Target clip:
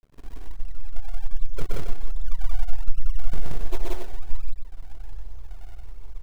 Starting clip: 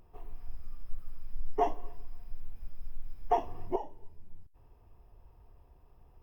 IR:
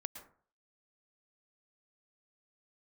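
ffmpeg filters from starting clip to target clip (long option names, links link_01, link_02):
-af "bandreject=frequency=52.57:width_type=h:width=4,bandreject=frequency=105.14:width_type=h:width=4,bandreject=frequency=157.71:width_type=h:width=4,bandreject=frequency=210.28:width_type=h:width=4,bandreject=frequency=262.85:width_type=h:width=4,bandreject=frequency=315.42:width_type=h:width=4,bandreject=frequency=367.99:width_type=h:width=4,bandreject=frequency=420.56:width_type=h:width=4,bandreject=frequency=473.13:width_type=h:width=4,bandreject=frequency=525.7:width_type=h:width=4,bandreject=frequency=578.27:width_type=h:width=4,bandreject=frequency=630.84:width_type=h:width=4,bandreject=frequency=683.41:width_type=h:width=4,bandreject=frequency=735.98:width_type=h:width=4,aeval=exprs='max(val(0),0)':channel_layout=same,acompressor=threshold=-38dB:ratio=6,asubboost=boost=7.5:cutoff=51,acrusher=samples=35:mix=1:aa=0.000001:lfo=1:lforange=56:lforate=1.3,aecho=1:1:125.4|177.8|274.1:0.794|1|0.447,volume=8dB"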